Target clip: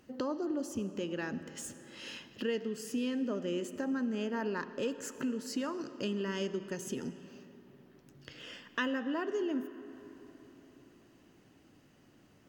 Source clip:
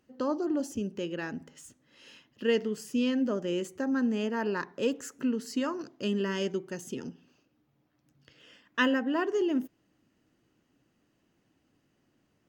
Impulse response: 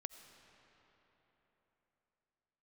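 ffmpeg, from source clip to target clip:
-filter_complex "[0:a]acompressor=threshold=0.00398:ratio=2.5,asplit=2[s0][s1];[1:a]atrim=start_sample=2205[s2];[s1][s2]afir=irnorm=-1:irlink=0,volume=2.82[s3];[s0][s3]amix=inputs=2:normalize=0"

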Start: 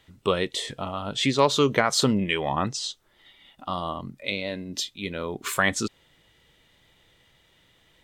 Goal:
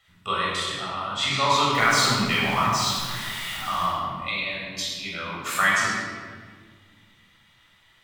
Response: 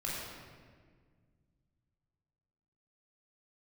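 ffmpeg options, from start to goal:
-filter_complex "[0:a]asettb=1/sr,asplit=3[s0][s1][s2];[s0]atrim=end=1.734[s3];[s1]atrim=start=1.73:end=3.86,asetpts=PTS-STARTPTS,afade=t=in:d=0.004:c=qsin,afade=t=out:st=2.126:d=0.004:c=qsin,aeval=exprs='val(0)+0.5*0.0316*sgn(val(0))':c=same[s4];[s2]atrim=start=3.856[s5];[s3][s4]acrossfade=d=0.004:c1=hsin:c2=qsin[s6];[s6][s5]acrossfade=d=0.004:c1=qsin:c2=hsin,lowshelf=f=740:t=q:w=1.5:g=-9.5[s7];[1:a]atrim=start_sample=2205[s8];[s7][s8]afir=irnorm=-1:irlink=0"

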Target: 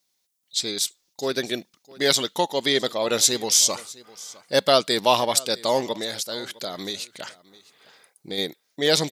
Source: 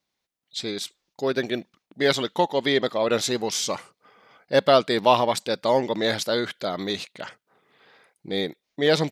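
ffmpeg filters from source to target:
-filter_complex "[0:a]bass=f=250:g=-2,treble=f=4000:g=15,asplit=3[s0][s1][s2];[s0]afade=t=out:st=5.92:d=0.02[s3];[s1]acompressor=threshold=0.0447:ratio=3,afade=t=in:st=5.92:d=0.02,afade=t=out:st=8.37:d=0.02[s4];[s2]afade=t=in:st=8.37:d=0.02[s5];[s3][s4][s5]amix=inputs=3:normalize=0,aecho=1:1:658:0.0841,volume=0.841"

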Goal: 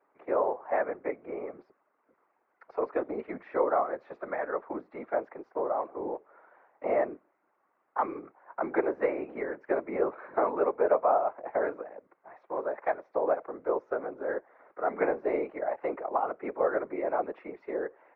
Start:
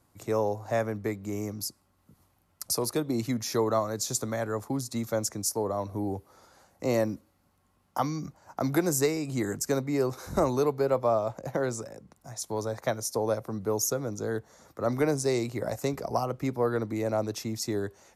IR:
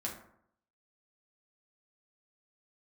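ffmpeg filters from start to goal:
-af "highpass=f=330:t=q:w=0.5412,highpass=f=330:t=q:w=1.307,lowpass=f=2100:t=q:w=0.5176,lowpass=f=2100:t=q:w=0.7071,lowpass=f=2100:t=q:w=1.932,afreqshift=51,afftfilt=real='hypot(re,im)*cos(2*PI*random(0))':imag='hypot(re,im)*sin(2*PI*random(1))':win_size=512:overlap=0.75,volume=2.11"

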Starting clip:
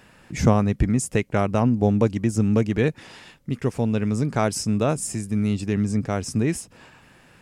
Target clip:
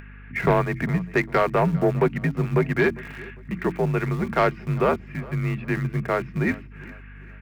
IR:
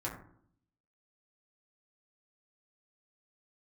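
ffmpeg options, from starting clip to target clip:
-filter_complex "[0:a]tiltshelf=f=810:g=-5.5,bandreject=f=50:t=h:w=6,bandreject=f=100:t=h:w=6,bandreject=f=150:t=h:w=6,bandreject=f=200:t=h:w=6,bandreject=f=250:t=h:w=6,bandreject=f=300:t=h:w=6,bandreject=f=350:t=h:w=6,bandreject=f=400:t=h:w=6,aecho=1:1:4.1:0.31,highpass=f=220:t=q:w=0.5412,highpass=f=220:t=q:w=1.307,lowpass=f=2300:t=q:w=0.5176,lowpass=f=2300:t=q:w=0.7071,lowpass=f=2300:t=q:w=1.932,afreqshift=-72,acrossover=split=370|1300[s0][s1][s2];[s1]aeval=exprs='val(0)*gte(abs(val(0)),0.00562)':c=same[s3];[s0][s3][s2]amix=inputs=3:normalize=0,aeval=exprs='val(0)+0.00398*(sin(2*PI*50*n/s)+sin(2*PI*2*50*n/s)/2+sin(2*PI*3*50*n/s)/3+sin(2*PI*4*50*n/s)/4+sin(2*PI*5*50*n/s)/5)':c=same,asoftclip=type=tanh:threshold=0.133,asplit=2[s4][s5];[s5]aecho=0:1:402|804|1206:0.0891|0.0339|0.0129[s6];[s4][s6]amix=inputs=2:normalize=0,acompressor=mode=upward:threshold=0.00398:ratio=2.5,volume=2"

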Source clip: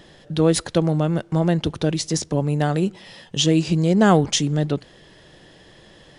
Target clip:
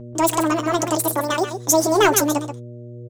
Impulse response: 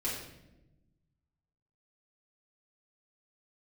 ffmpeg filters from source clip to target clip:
-filter_complex "[0:a]highpass=130,agate=range=0.00708:threshold=0.0112:ratio=16:detection=peak,equalizer=f=3600:t=o:w=1.6:g=6,acontrast=22,aeval=exprs='val(0)+0.0316*(sin(2*PI*60*n/s)+sin(2*PI*2*60*n/s)/2+sin(2*PI*3*60*n/s)/3+sin(2*PI*4*60*n/s)/4+sin(2*PI*5*60*n/s)/5)':c=same,flanger=delay=10:depth=5.3:regen=-39:speed=0.36:shape=sinusoidal,asplit=2[s0][s1];[s1]adelay=262.4,volume=0.355,highshelf=f=4000:g=-5.9[s2];[s0][s2]amix=inputs=2:normalize=0,asetrate=88200,aresample=44100"

